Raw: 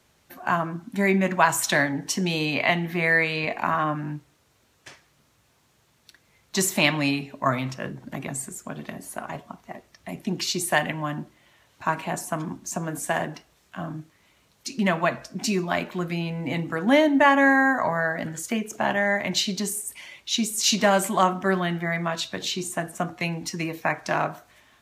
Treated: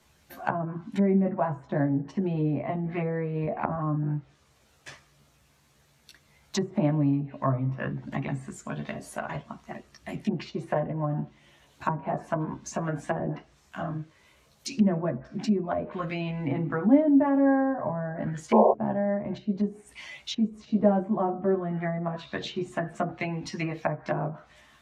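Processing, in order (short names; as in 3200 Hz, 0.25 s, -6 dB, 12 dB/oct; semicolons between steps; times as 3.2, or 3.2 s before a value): painted sound noise, 18.52–18.73, 360–1100 Hz -13 dBFS; chorus voices 4, 0.29 Hz, delay 14 ms, depth 1 ms; treble ducked by the level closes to 530 Hz, closed at -24.5 dBFS; gain +3 dB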